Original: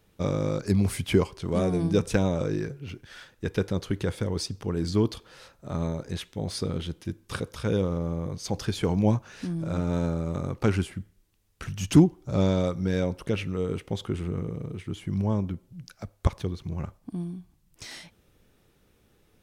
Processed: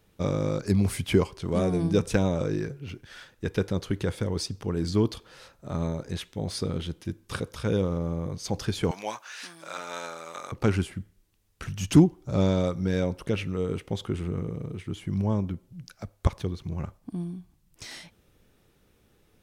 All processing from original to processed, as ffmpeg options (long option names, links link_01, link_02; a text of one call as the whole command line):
ffmpeg -i in.wav -filter_complex "[0:a]asettb=1/sr,asplit=3[link_01][link_02][link_03];[link_01]atrim=end=8.914[link_04];[link_02]atrim=start=8.91:end=10.52,asetpts=PTS-STARTPTS,afade=type=in:duration=0.004:curve=qsin,afade=type=out:start_time=1.606:duration=0.004:curve=qsin,highpass=1200,acontrast=84,asoftclip=type=hard:threshold=-20.5dB[link_05];[link_03]atrim=start=10.516[link_06];[link_04][link_05]acrossfade=duration=0.004:curve1=hsin:curve2=qsin[link_07];[link_07][link_06]acrossfade=duration=0.004:curve1=qsin:curve2=hsin" out.wav